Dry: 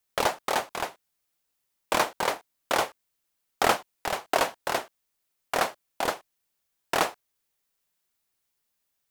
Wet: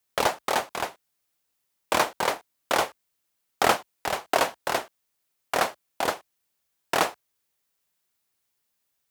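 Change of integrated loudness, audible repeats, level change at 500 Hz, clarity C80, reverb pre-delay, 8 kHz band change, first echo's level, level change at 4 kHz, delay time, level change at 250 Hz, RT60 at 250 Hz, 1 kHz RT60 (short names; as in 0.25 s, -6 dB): +1.5 dB, none, +1.5 dB, none, none, +1.5 dB, none, +1.5 dB, none, +1.5 dB, none, none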